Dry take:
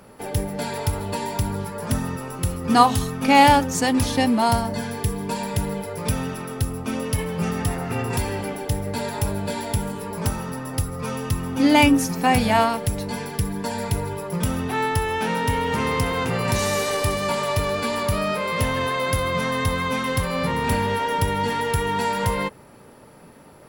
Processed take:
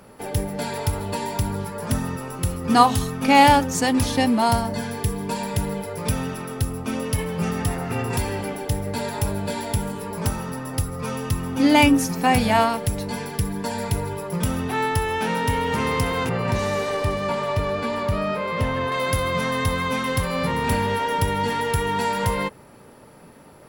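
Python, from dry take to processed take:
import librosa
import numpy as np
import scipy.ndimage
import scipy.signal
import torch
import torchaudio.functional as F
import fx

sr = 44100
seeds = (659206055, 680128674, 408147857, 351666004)

y = fx.peak_eq(x, sr, hz=14000.0, db=-14.0, octaves=2.1, at=(16.29, 18.92))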